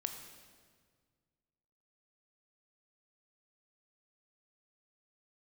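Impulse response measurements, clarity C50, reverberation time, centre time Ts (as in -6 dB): 7.0 dB, 1.8 s, 32 ms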